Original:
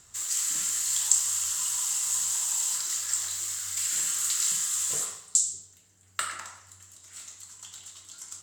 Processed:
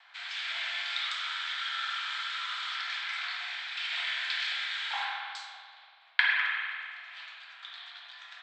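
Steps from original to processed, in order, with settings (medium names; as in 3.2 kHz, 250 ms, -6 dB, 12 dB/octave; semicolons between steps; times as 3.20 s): gate with hold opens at -48 dBFS; mistuned SSB +360 Hz 380–3400 Hz; spring tank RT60 2 s, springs 46 ms, chirp 45 ms, DRR -0.5 dB; trim +8 dB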